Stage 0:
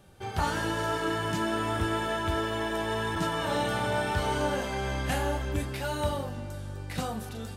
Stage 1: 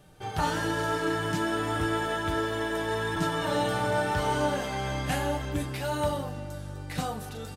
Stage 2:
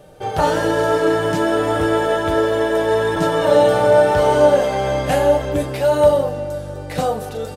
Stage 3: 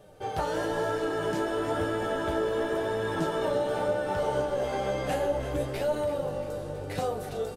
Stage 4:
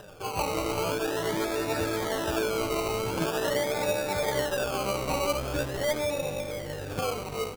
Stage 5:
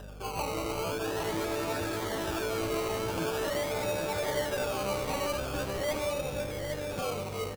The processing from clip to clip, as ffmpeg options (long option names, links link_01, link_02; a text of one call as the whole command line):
ffmpeg -i in.wav -af "aecho=1:1:6.6:0.45" out.wav
ffmpeg -i in.wav -af "equalizer=frequency=540:width_type=o:width=0.9:gain=13.5,volume=6dB" out.wav
ffmpeg -i in.wav -filter_complex "[0:a]acompressor=threshold=-17dB:ratio=6,asplit=8[link_01][link_02][link_03][link_04][link_05][link_06][link_07][link_08];[link_02]adelay=335,afreqshift=-61,volume=-12dB[link_09];[link_03]adelay=670,afreqshift=-122,volume=-16dB[link_10];[link_04]adelay=1005,afreqshift=-183,volume=-20dB[link_11];[link_05]adelay=1340,afreqshift=-244,volume=-24dB[link_12];[link_06]adelay=1675,afreqshift=-305,volume=-28.1dB[link_13];[link_07]adelay=2010,afreqshift=-366,volume=-32.1dB[link_14];[link_08]adelay=2345,afreqshift=-427,volume=-36.1dB[link_15];[link_01][link_09][link_10][link_11][link_12][link_13][link_14][link_15]amix=inputs=8:normalize=0,flanger=delay=9.4:depth=6.8:regen=45:speed=1:shape=sinusoidal,volume=-4.5dB" out.wav
ffmpeg -i in.wav -af "acompressor=mode=upward:threshold=-41dB:ratio=2.5,acrusher=samples=20:mix=1:aa=0.000001:lfo=1:lforange=12:lforate=0.44" out.wav
ffmpeg -i in.wav -filter_complex "[0:a]aeval=exprs='val(0)+0.00794*(sin(2*PI*50*n/s)+sin(2*PI*2*50*n/s)/2+sin(2*PI*3*50*n/s)/3+sin(2*PI*4*50*n/s)/4+sin(2*PI*5*50*n/s)/5)':channel_layout=same,asoftclip=type=tanh:threshold=-23dB,asplit=2[link_01][link_02];[link_02]aecho=0:1:810:0.501[link_03];[link_01][link_03]amix=inputs=2:normalize=0,volume=-2.5dB" out.wav